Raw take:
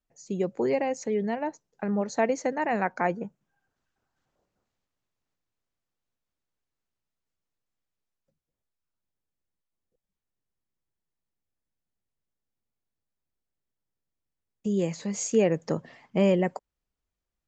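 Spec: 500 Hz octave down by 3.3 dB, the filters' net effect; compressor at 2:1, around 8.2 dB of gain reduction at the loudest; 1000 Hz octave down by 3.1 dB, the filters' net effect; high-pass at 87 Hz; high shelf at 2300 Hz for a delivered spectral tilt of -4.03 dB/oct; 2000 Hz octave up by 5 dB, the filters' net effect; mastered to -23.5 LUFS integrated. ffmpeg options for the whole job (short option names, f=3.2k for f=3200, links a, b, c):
-af "highpass=87,equalizer=f=500:t=o:g=-3.5,equalizer=f=1k:t=o:g=-4.5,equalizer=f=2k:t=o:g=4,highshelf=f=2.3k:g=7,acompressor=threshold=-34dB:ratio=2,volume=11dB"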